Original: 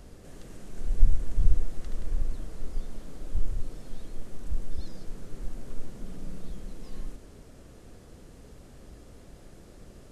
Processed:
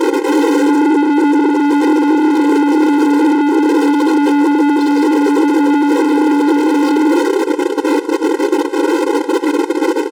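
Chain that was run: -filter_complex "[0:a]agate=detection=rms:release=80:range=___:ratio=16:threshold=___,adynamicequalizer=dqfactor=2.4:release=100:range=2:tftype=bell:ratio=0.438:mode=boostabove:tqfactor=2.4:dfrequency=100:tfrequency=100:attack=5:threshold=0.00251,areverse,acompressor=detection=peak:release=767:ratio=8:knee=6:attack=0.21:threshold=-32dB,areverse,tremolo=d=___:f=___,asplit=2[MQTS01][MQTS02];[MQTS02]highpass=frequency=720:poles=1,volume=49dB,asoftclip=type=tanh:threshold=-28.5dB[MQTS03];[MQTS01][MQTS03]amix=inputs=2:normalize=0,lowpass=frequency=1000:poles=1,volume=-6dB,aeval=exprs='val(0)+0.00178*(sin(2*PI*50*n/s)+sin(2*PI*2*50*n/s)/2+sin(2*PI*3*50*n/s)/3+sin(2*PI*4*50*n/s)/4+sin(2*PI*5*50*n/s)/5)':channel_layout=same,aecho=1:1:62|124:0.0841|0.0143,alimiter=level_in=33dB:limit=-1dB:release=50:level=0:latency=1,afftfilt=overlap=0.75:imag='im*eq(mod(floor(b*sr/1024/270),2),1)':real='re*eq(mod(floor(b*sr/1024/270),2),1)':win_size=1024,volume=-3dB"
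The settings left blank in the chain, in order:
-31dB, -46dB, 1, 290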